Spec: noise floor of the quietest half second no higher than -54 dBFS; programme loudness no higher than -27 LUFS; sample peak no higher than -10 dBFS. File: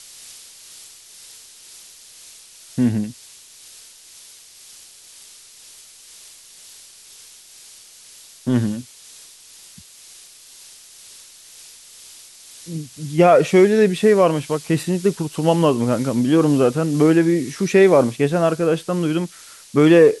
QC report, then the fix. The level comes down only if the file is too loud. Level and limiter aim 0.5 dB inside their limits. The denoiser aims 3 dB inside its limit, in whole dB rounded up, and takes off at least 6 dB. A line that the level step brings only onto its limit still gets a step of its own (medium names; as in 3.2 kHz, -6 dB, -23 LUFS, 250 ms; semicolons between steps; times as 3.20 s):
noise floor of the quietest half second -45 dBFS: fail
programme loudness -17.5 LUFS: fail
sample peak -3.0 dBFS: fail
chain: trim -10 dB